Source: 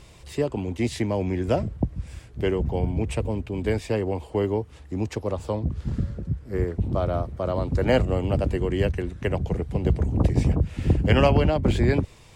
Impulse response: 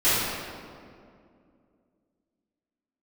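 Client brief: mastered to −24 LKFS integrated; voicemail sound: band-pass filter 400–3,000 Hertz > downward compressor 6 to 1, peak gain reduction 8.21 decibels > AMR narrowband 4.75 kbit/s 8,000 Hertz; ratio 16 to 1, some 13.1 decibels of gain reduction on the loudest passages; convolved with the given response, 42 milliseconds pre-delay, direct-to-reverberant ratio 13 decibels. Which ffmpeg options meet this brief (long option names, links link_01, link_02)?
-filter_complex "[0:a]acompressor=threshold=-27dB:ratio=16,asplit=2[link_01][link_02];[1:a]atrim=start_sample=2205,adelay=42[link_03];[link_02][link_03]afir=irnorm=-1:irlink=0,volume=-31dB[link_04];[link_01][link_04]amix=inputs=2:normalize=0,highpass=400,lowpass=3000,acompressor=threshold=-37dB:ratio=6,volume=21dB" -ar 8000 -c:a libopencore_amrnb -b:a 4750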